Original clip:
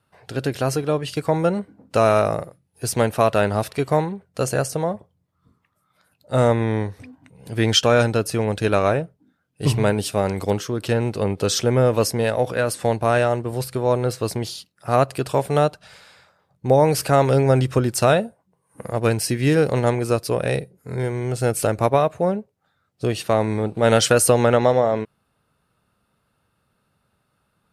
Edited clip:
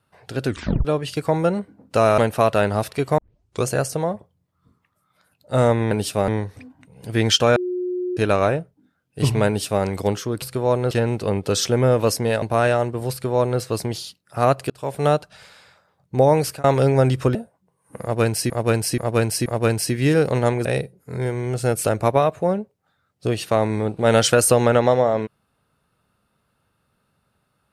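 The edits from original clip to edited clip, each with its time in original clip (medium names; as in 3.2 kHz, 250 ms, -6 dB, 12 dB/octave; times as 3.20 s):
0.45 s: tape stop 0.40 s
2.18–2.98 s: delete
3.98 s: tape start 0.48 s
7.99–8.60 s: bleep 361 Hz -22 dBFS
9.90–10.27 s: copy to 6.71 s
12.36–12.93 s: delete
13.62–14.11 s: copy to 10.85 s
15.21–15.58 s: fade in
16.80–17.15 s: fade out equal-power
17.86–18.20 s: delete
18.87–19.35 s: loop, 4 plays
20.06–20.43 s: delete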